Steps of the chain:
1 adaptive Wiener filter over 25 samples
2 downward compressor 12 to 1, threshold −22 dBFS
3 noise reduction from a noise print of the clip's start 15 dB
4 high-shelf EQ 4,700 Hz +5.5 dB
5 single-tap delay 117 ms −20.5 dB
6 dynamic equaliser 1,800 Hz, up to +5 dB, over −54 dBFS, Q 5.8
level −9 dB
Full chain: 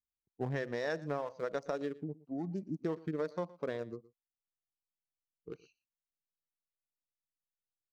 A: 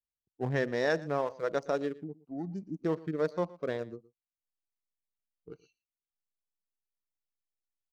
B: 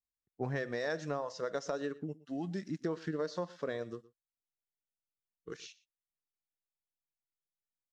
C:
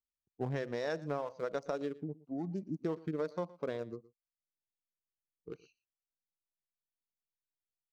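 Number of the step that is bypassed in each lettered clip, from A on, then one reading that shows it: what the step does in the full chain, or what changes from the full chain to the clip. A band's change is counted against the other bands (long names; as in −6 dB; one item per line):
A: 2, average gain reduction 3.0 dB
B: 1, 4 kHz band +4.5 dB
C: 6, 2 kHz band −3.0 dB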